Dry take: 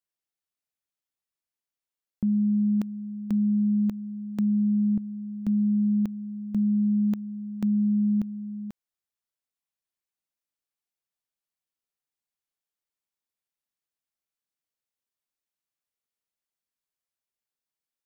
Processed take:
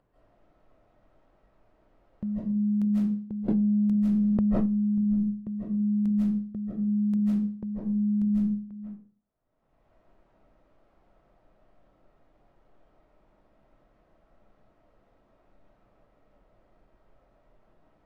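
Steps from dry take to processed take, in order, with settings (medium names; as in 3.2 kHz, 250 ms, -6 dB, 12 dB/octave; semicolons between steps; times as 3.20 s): level-controlled noise filter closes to 690 Hz, open at -21 dBFS; gate with hold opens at -21 dBFS; bass shelf 160 Hz +7.5 dB; hum notches 60/120/180/240/300/360/420/480/540 Hz; peak limiter -26.5 dBFS, peak gain reduction 10.5 dB; upward compressor, threshold -34 dBFS; reverberation RT60 0.45 s, pre-delay 120 ms, DRR -9 dB; 3.48–4.66 s: level flattener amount 100%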